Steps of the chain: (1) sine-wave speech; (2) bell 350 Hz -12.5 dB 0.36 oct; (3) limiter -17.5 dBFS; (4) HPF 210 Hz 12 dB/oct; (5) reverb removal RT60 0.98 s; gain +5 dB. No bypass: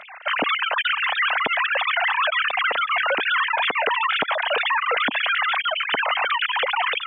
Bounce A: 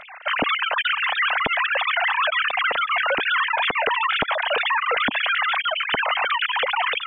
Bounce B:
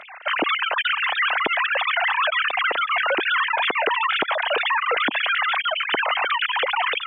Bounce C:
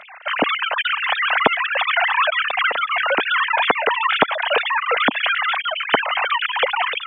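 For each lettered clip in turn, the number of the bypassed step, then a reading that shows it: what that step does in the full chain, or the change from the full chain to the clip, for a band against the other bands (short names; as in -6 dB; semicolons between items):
4, 250 Hz band +1.5 dB; 2, 250 Hz band +2.5 dB; 3, mean gain reduction 1.5 dB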